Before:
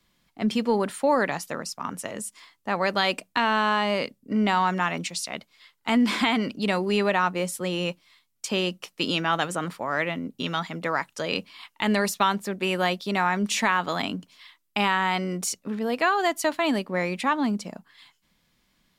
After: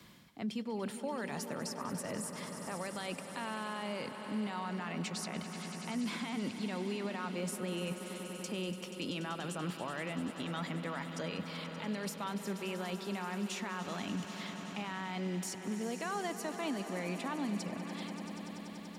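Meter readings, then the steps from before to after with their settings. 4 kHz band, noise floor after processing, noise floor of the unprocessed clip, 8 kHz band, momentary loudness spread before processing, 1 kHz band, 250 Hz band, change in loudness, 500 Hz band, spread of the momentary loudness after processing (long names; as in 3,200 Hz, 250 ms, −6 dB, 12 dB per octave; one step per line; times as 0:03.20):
−13.5 dB, −46 dBFS, −71 dBFS, −9.5 dB, 10 LU, −16.0 dB, −10.5 dB, −13.5 dB, −13.0 dB, 4 LU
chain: high-pass filter 88 Hz
low-shelf EQ 210 Hz +8 dB
reversed playback
downward compressor 5 to 1, threshold −35 dBFS, peak gain reduction 18.5 dB
reversed playback
brickwall limiter −29.5 dBFS, peak gain reduction 9 dB
on a send: echo that builds up and dies away 96 ms, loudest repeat 5, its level −15 dB
on the sum: multiband upward and downward compressor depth 40%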